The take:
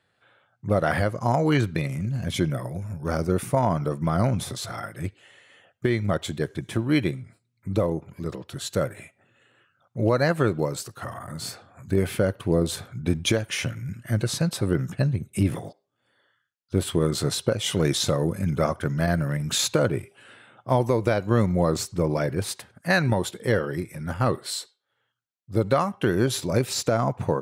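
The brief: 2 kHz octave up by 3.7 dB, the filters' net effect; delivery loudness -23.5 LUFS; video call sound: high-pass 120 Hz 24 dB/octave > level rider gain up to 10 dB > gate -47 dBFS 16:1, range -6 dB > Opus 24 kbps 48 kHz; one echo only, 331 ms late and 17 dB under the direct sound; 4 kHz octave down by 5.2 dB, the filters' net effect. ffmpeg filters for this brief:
-af "highpass=f=120:w=0.5412,highpass=f=120:w=1.3066,equalizer=f=2000:t=o:g=6.5,equalizer=f=4000:t=o:g=-8.5,aecho=1:1:331:0.141,dynaudnorm=m=3.16,agate=range=0.501:threshold=0.00447:ratio=16" -ar 48000 -c:a libopus -b:a 24k

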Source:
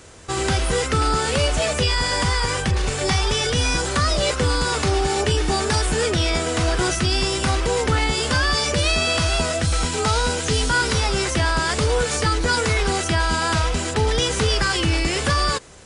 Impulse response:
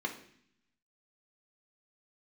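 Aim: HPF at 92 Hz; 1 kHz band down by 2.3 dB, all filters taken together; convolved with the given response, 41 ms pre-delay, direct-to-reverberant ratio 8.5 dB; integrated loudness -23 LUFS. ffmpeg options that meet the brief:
-filter_complex "[0:a]highpass=92,equalizer=f=1000:t=o:g=-3,asplit=2[s0][s1];[1:a]atrim=start_sample=2205,adelay=41[s2];[s1][s2]afir=irnorm=-1:irlink=0,volume=0.237[s3];[s0][s3]amix=inputs=2:normalize=0,volume=0.794"

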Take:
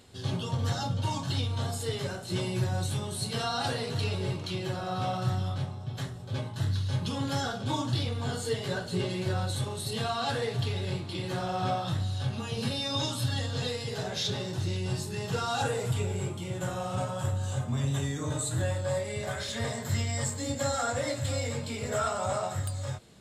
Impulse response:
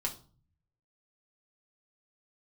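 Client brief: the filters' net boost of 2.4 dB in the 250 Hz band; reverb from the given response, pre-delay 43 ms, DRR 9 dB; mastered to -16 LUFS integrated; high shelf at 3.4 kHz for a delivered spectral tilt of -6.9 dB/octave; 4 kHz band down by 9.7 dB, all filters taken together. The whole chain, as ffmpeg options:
-filter_complex "[0:a]equalizer=f=250:t=o:g=3.5,highshelf=f=3400:g=-6.5,equalizer=f=4000:t=o:g=-7.5,asplit=2[s0][s1];[1:a]atrim=start_sample=2205,adelay=43[s2];[s1][s2]afir=irnorm=-1:irlink=0,volume=0.251[s3];[s0][s3]amix=inputs=2:normalize=0,volume=5.62"

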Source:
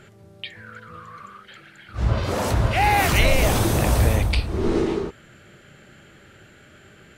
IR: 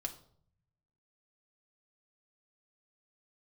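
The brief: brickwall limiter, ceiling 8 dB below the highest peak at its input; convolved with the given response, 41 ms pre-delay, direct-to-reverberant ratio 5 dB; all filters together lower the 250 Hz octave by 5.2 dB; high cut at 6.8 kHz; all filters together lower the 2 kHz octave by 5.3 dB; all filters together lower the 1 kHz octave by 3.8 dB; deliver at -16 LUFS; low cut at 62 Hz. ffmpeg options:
-filter_complex "[0:a]highpass=62,lowpass=6800,equalizer=f=250:t=o:g=-7.5,equalizer=f=1000:t=o:g=-3.5,equalizer=f=2000:t=o:g=-5.5,alimiter=limit=0.15:level=0:latency=1,asplit=2[s0][s1];[1:a]atrim=start_sample=2205,adelay=41[s2];[s1][s2]afir=irnorm=-1:irlink=0,volume=0.631[s3];[s0][s3]amix=inputs=2:normalize=0,volume=2.99"

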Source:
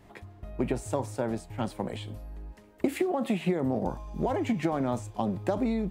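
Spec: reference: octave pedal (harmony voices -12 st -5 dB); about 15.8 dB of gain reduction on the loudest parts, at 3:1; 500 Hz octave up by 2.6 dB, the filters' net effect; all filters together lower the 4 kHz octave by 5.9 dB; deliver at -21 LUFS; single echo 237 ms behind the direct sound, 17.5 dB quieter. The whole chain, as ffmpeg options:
-filter_complex "[0:a]equalizer=f=500:t=o:g=3.5,equalizer=f=4000:t=o:g=-8.5,acompressor=threshold=0.00708:ratio=3,aecho=1:1:237:0.133,asplit=2[s0][s1];[s1]asetrate=22050,aresample=44100,atempo=2,volume=0.562[s2];[s0][s2]amix=inputs=2:normalize=0,volume=12.6"

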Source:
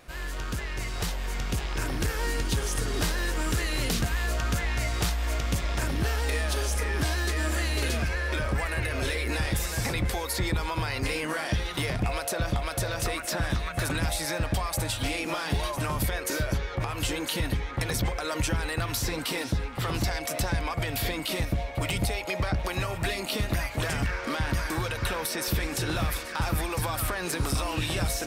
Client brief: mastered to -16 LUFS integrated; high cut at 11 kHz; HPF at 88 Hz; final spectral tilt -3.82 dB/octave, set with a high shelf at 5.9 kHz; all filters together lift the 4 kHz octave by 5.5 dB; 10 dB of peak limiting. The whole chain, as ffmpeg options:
-af "highpass=88,lowpass=11000,equalizer=f=4000:t=o:g=4.5,highshelf=f=5900:g=6.5,volume=5.31,alimiter=limit=0.473:level=0:latency=1"

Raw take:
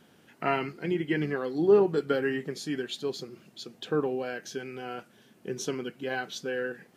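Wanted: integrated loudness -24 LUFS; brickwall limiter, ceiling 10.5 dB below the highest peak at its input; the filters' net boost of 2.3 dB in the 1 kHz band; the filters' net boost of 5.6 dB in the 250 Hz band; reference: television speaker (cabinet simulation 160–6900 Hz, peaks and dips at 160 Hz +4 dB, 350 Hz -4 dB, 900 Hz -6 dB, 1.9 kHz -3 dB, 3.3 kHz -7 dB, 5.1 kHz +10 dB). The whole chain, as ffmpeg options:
-af "equalizer=f=250:t=o:g=9,equalizer=f=1000:t=o:g=6,alimiter=limit=0.141:level=0:latency=1,highpass=f=160:w=0.5412,highpass=f=160:w=1.3066,equalizer=f=160:t=q:w=4:g=4,equalizer=f=350:t=q:w=4:g=-4,equalizer=f=900:t=q:w=4:g=-6,equalizer=f=1900:t=q:w=4:g=-3,equalizer=f=3300:t=q:w=4:g=-7,equalizer=f=5100:t=q:w=4:g=10,lowpass=f=6900:w=0.5412,lowpass=f=6900:w=1.3066,volume=2"

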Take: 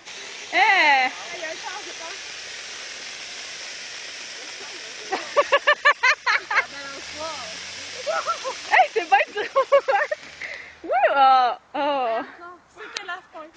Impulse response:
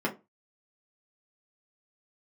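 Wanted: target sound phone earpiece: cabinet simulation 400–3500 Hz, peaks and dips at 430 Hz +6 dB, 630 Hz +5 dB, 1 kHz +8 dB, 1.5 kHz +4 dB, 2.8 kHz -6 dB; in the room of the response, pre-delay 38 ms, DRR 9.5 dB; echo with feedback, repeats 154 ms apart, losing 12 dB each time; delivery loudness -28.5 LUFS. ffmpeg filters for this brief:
-filter_complex "[0:a]aecho=1:1:154|308|462:0.251|0.0628|0.0157,asplit=2[s0][s1];[1:a]atrim=start_sample=2205,adelay=38[s2];[s1][s2]afir=irnorm=-1:irlink=0,volume=0.119[s3];[s0][s3]amix=inputs=2:normalize=0,highpass=400,equalizer=f=430:t=q:w=4:g=6,equalizer=f=630:t=q:w=4:g=5,equalizer=f=1000:t=q:w=4:g=8,equalizer=f=1500:t=q:w=4:g=4,equalizer=f=2800:t=q:w=4:g=-6,lowpass=f=3500:w=0.5412,lowpass=f=3500:w=1.3066,volume=0.266"

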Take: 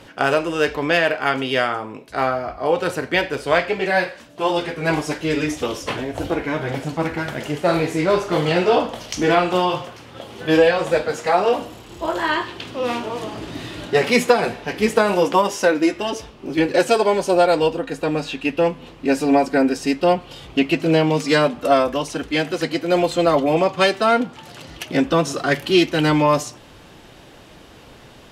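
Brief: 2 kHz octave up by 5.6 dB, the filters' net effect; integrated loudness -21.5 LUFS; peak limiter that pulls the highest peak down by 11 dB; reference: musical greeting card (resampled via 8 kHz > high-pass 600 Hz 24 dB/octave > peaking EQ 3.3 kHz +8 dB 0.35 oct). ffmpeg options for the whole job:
-af "equalizer=f=2000:t=o:g=6.5,alimiter=limit=0.299:level=0:latency=1,aresample=8000,aresample=44100,highpass=f=600:w=0.5412,highpass=f=600:w=1.3066,equalizer=f=3300:t=o:w=0.35:g=8,volume=1.26"

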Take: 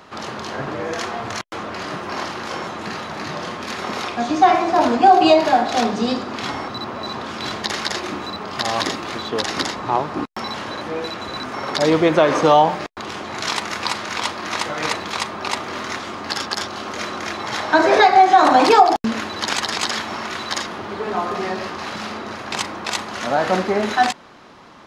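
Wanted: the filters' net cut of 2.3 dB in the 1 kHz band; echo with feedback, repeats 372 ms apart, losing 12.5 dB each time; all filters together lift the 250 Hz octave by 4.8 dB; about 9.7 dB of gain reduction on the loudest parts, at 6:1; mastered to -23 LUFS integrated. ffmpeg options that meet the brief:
-af "equalizer=f=250:t=o:g=6.5,equalizer=f=1000:t=o:g=-4,acompressor=threshold=0.112:ratio=6,aecho=1:1:372|744|1116:0.237|0.0569|0.0137,volume=1.26"

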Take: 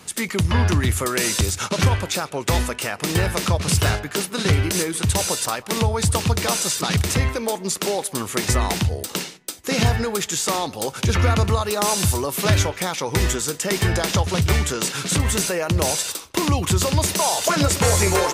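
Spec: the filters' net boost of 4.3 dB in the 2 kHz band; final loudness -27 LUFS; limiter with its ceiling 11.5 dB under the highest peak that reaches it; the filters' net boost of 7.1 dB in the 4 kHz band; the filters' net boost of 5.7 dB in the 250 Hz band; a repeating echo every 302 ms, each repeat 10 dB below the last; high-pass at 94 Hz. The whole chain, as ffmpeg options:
-af "highpass=94,equalizer=f=250:t=o:g=8,equalizer=f=2000:t=o:g=3,equalizer=f=4000:t=o:g=8,alimiter=limit=0.266:level=0:latency=1,aecho=1:1:302|604|906|1208:0.316|0.101|0.0324|0.0104,volume=0.501"

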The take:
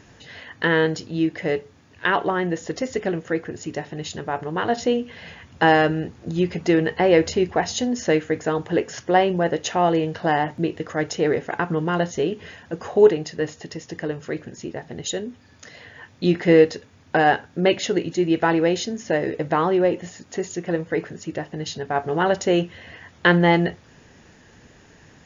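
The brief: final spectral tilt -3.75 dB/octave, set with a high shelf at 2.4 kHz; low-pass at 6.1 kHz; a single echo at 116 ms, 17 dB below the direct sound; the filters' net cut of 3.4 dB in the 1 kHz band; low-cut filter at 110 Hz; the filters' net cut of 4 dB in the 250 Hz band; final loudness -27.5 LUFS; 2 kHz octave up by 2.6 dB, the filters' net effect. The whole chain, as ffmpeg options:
-af "highpass=110,lowpass=6100,equalizer=f=250:t=o:g=-6,equalizer=f=1000:t=o:g=-5,equalizer=f=2000:t=o:g=7.5,highshelf=f=2400:g=-6,aecho=1:1:116:0.141,volume=0.668"

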